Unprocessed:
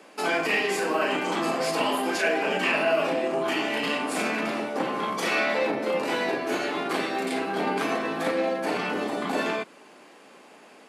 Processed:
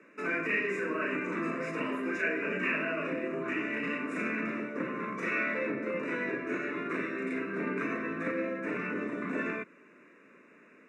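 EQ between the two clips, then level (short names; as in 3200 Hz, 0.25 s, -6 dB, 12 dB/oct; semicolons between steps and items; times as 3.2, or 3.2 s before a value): Butterworth band-stop 3200 Hz, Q 3.2; air absorption 150 m; fixed phaser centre 1900 Hz, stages 4; -2.0 dB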